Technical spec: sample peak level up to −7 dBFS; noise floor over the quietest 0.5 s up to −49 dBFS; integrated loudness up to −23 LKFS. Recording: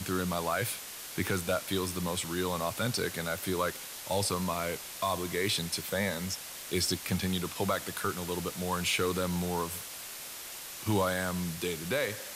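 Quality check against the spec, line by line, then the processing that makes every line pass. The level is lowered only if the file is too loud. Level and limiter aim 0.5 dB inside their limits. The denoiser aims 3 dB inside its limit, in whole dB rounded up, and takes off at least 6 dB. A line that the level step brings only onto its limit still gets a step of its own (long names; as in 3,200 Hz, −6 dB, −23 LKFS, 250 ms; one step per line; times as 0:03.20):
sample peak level −18.0 dBFS: in spec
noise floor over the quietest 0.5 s −43 dBFS: out of spec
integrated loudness −32.0 LKFS: in spec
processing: broadband denoise 9 dB, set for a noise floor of −43 dBFS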